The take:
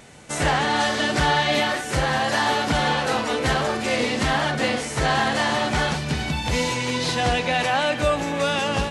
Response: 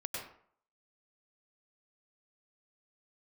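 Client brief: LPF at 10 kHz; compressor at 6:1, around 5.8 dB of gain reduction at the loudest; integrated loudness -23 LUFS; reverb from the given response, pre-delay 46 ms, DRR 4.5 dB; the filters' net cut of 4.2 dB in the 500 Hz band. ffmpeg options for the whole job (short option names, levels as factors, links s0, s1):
-filter_complex "[0:a]lowpass=10000,equalizer=f=500:t=o:g=-5,acompressor=threshold=0.0631:ratio=6,asplit=2[s0][s1];[1:a]atrim=start_sample=2205,adelay=46[s2];[s1][s2]afir=irnorm=-1:irlink=0,volume=0.501[s3];[s0][s3]amix=inputs=2:normalize=0,volume=1.41"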